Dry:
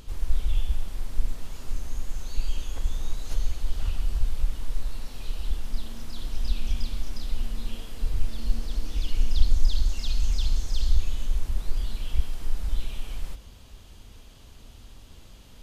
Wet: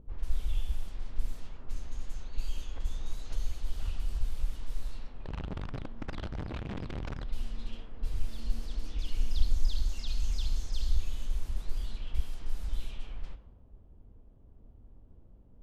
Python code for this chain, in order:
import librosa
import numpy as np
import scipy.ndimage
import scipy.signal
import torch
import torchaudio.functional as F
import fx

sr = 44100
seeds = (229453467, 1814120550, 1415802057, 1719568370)

y = fx.overflow_wrap(x, sr, gain_db=24.0, at=(5.22, 7.23), fade=0.02)
y = fx.env_lowpass(y, sr, base_hz=460.0, full_db=-17.5)
y = y * librosa.db_to_amplitude(-6.5)